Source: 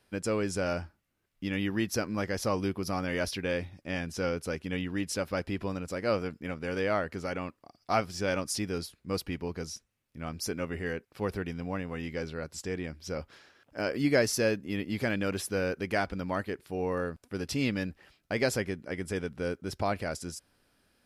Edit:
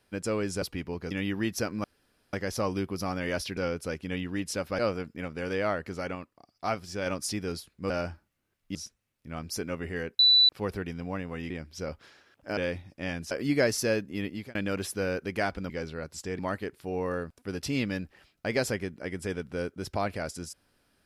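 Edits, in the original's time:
0.62–1.47 s: swap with 9.16–9.65 s
2.20 s: insert room tone 0.49 s
3.44–4.18 s: move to 13.86 s
5.40–6.05 s: delete
7.41–8.32 s: gain -3 dB
11.09 s: add tone 3.97 kHz -16 dBFS 0.30 s
12.10–12.79 s: move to 16.25 s
14.82–15.10 s: fade out

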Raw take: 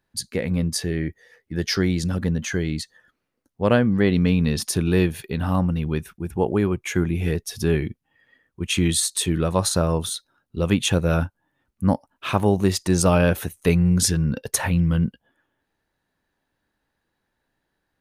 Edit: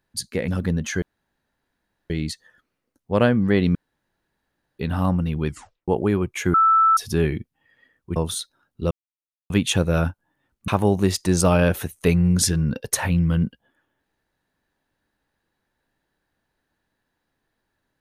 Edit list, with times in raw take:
0.48–2.06 s: delete
2.60 s: insert room tone 1.08 s
4.25–5.29 s: room tone
5.97 s: tape stop 0.41 s
7.04–7.47 s: bleep 1.32 kHz -12.5 dBFS
8.66–9.91 s: delete
10.66 s: insert silence 0.59 s
11.84–12.29 s: delete

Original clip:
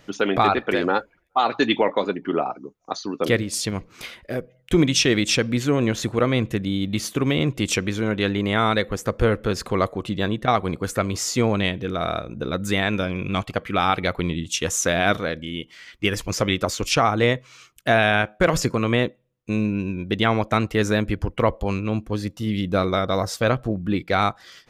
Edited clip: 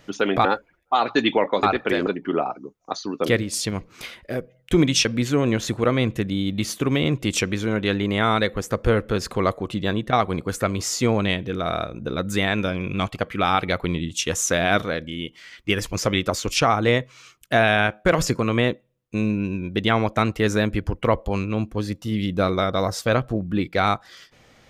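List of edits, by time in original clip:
0.45–0.89 s: move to 2.07 s
5.05–5.40 s: delete

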